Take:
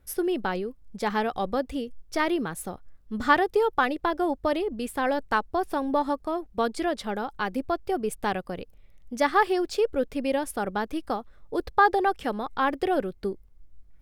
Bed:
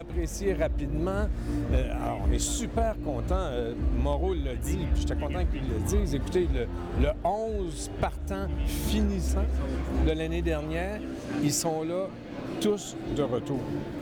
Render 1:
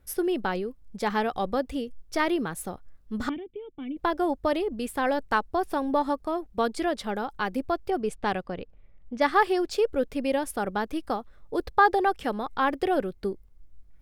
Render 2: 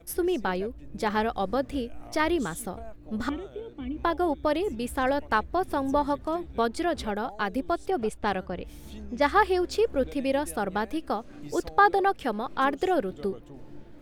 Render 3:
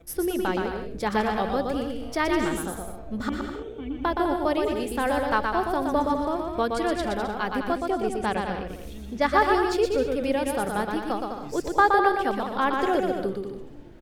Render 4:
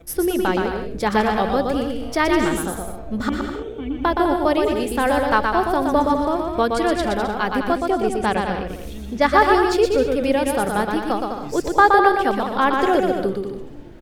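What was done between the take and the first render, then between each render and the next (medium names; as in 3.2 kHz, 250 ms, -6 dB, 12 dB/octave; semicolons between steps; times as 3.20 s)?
3.29–3.97 s: cascade formant filter i; 7.90–9.71 s: level-controlled noise filter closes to 1.6 kHz, open at -21 dBFS
add bed -16 dB
bouncing-ball echo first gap 120 ms, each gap 0.7×, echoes 5
trim +6 dB; peak limiter -2 dBFS, peak gain reduction 1 dB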